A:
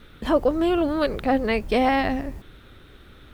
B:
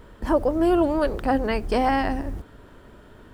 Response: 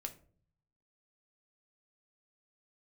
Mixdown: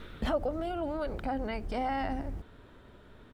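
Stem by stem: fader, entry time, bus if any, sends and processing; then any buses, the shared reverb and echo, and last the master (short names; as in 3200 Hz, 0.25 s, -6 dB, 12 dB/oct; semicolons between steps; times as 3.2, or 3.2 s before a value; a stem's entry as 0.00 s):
+2.5 dB, 0.00 s, no send, compressor, threshold -26 dBFS, peak gain reduction 11.5 dB; auto duck -15 dB, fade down 1.05 s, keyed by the second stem
-7.5 dB, 1.2 ms, no send, limiter -17.5 dBFS, peak gain reduction 7.5 dB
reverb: off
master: high shelf 6900 Hz -7.5 dB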